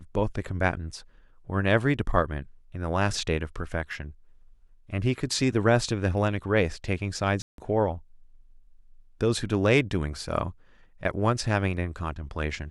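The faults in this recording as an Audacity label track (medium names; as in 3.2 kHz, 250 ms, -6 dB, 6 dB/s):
7.420000	7.580000	dropout 162 ms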